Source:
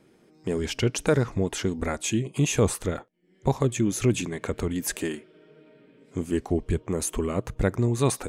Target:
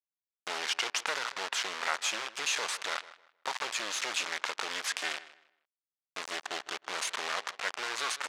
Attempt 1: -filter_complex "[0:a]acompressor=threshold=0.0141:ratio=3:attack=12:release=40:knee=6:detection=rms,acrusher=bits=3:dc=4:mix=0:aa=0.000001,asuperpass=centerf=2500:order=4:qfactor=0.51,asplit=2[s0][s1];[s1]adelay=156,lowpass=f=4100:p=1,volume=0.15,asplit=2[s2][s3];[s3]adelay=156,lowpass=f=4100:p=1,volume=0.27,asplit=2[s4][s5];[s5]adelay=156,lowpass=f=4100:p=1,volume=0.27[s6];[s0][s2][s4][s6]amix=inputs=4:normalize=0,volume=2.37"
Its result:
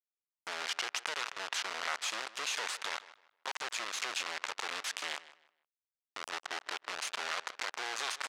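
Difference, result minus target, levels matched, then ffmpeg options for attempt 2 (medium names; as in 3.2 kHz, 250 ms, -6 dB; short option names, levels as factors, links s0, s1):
compression: peak gain reduction +6.5 dB
-filter_complex "[0:a]acompressor=threshold=0.0447:ratio=3:attack=12:release=40:knee=6:detection=rms,acrusher=bits=3:dc=4:mix=0:aa=0.000001,asuperpass=centerf=2500:order=4:qfactor=0.51,asplit=2[s0][s1];[s1]adelay=156,lowpass=f=4100:p=1,volume=0.15,asplit=2[s2][s3];[s3]adelay=156,lowpass=f=4100:p=1,volume=0.27,asplit=2[s4][s5];[s5]adelay=156,lowpass=f=4100:p=1,volume=0.27[s6];[s0][s2][s4][s6]amix=inputs=4:normalize=0,volume=2.37"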